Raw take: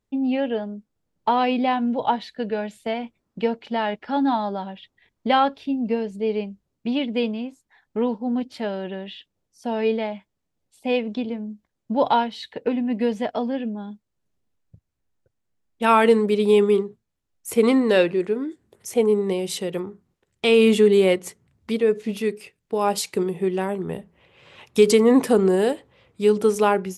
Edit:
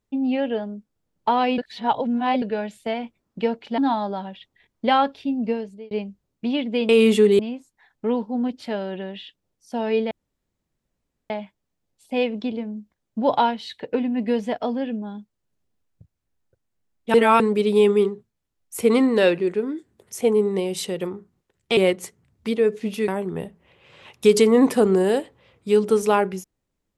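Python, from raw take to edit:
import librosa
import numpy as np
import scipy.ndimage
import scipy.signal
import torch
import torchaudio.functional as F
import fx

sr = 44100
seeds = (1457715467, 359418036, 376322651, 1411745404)

y = fx.edit(x, sr, fx.reverse_span(start_s=1.58, length_s=0.84),
    fx.cut(start_s=3.78, length_s=0.42),
    fx.fade_out_span(start_s=5.9, length_s=0.43),
    fx.insert_room_tone(at_s=10.03, length_s=1.19),
    fx.reverse_span(start_s=15.87, length_s=0.26),
    fx.move(start_s=20.5, length_s=0.5, to_s=7.31),
    fx.cut(start_s=22.31, length_s=1.3), tone=tone)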